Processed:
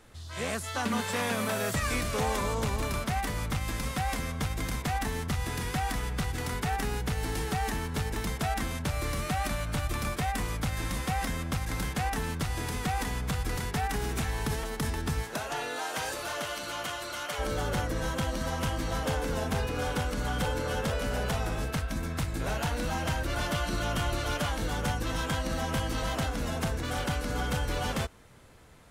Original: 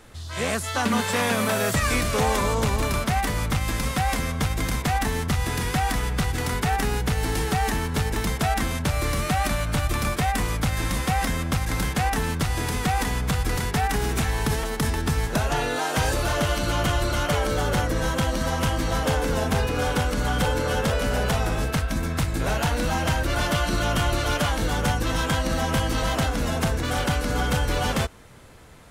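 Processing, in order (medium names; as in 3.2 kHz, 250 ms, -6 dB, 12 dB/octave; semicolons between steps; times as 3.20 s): 15.22–17.38 s: high-pass 370 Hz -> 1 kHz 6 dB/octave; trim -7 dB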